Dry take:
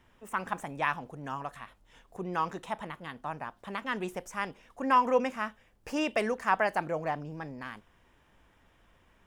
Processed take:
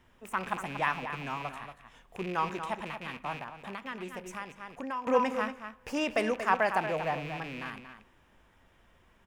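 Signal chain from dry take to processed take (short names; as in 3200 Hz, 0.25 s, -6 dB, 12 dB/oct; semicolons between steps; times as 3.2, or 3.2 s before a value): rattling part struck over -50 dBFS, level -32 dBFS; outdoor echo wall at 40 m, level -9 dB; reverb, pre-delay 3 ms, DRR 14.5 dB; 3.36–5.07 compressor 3:1, threshold -38 dBFS, peak gain reduction 14.5 dB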